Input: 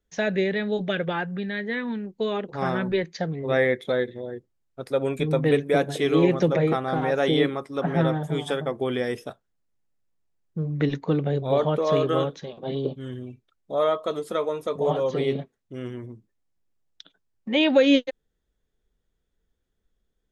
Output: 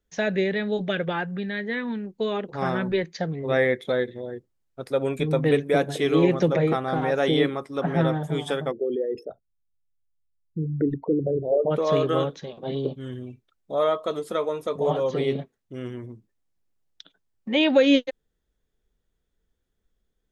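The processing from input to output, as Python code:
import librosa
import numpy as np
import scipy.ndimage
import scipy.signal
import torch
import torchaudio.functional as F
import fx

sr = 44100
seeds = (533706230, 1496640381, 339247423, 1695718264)

y = fx.envelope_sharpen(x, sr, power=3.0, at=(8.71, 11.7), fade=0.02)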